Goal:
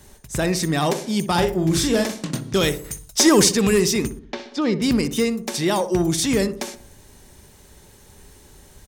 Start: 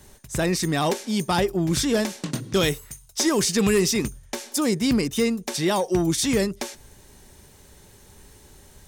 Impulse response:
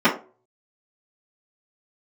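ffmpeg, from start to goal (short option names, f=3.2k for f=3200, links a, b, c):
-filter_complex "[0:a]asettb=1/sr,asplit=3[a][b][c];[a]atrim=end=1.334[d];[b]atrim=start=1.33:end=2.14,asetpts=PTS-STARTPTS,afade=t=in:d=0.004:c=qsin,afade=t=out:st=0.806:d=0.004:c=qsin,asplit=2[e][f];[f]adelay=44,volume=-6dB[g];[e][g]amix=inputs=2:normalize=0,atrim=end_sample=35721[h];[c]atrim=start=2.136[i];[d][h]acrossfade=d=0.004:c1=hsin:c2=qsin[j];[j][i]acrossfade=d=0.004:c1=qsin:c2=hsin,asettb=1/sr,asplit=3[k][l][m];[k]atrim=end=2.844[n];[l]atrim=start=2.84:end=3.49,asetpts=PTS-STARTPTS,afade=t=in:d=0.004:c=qsin,afade=t=out:st=0.646:d=0.004:c=qsin,acontrast=46[o];[m]atrim=start=3.486[p];[n][o]acrossfade=d=0.004:c1=hsin:c2=qsin[q];[q][p]acrossfade=d=0.004:c1=qsin:c2=hsin,asettb=1/sr,asplit=3[r][s][t];[r]atrim=end=4.194[u];[s]atrim=start=4.19:end=4.82,asetpts=PTS-STARTPTS,afade=t=in:d=0.004:c=qsin,afade=t=out:st=0.626:d=0.004:c=qsin,lowpass=f=4.4k:w=0.5412,lowpass=f=4.4k:w=1.3066[v];[t]atrim=start=4.816[w];[u][v]acrossfade=d=0.004:c1=hsin:c2=qsin[x];[x][w]acrossfade=d=0.004:c1=qsin:c2=hsin,asplit=2[y][z];[z]adelay=62,lowpass=f=1.1k:p=1,volume=-10dB,asplit=2[aa][ab];[ab]adelay=62,lowpass=f=1.1k:p=1,volume=0.53,asplit=2[ac][ad];[ad]adelay=62,lowpass=f=1.1k:p=1,volume=0.53,asplit=2[ae][af];[af]adelay=62,lowpass=f=1.1k:p=1,volume=0.53,asplit=2[ag][ah];[ah]adelay=62,lowpass=f=1.1k:p=1,volume=0.53,asplit=2[ai][aj];[aj]adelay=62,lowpass=f=1.1k:p=1,volume=0.53[ak];[y][aa][ac][ae][ag][ai][ak]amix=inputs=7:normalize=0,volume=1.5dB"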